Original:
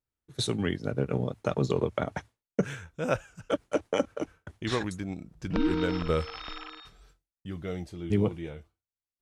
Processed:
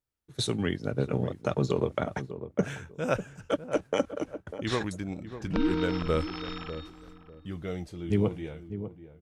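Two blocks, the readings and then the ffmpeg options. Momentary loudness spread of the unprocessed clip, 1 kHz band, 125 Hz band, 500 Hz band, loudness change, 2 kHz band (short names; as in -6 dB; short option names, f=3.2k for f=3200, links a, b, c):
14 LU, 0.0 dB, +0.5 dB, +0.5 dB, 0.0 dB, 0.0 dB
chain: -filter_complex "[0:a]asplit=2[a][b];[b]adelay=597,lowpass=f=850:p=1,volume=-10.5dB,asplit=2[c][d];[d]adelay=597,lowpass=f=850:p=1,volume=0.26,asplit=2[e][f];[f]adelay=597,lowpass=f=850:p=1,volume=0.26[g];[a][c][e][g]amix=inputs=4:normalize=0"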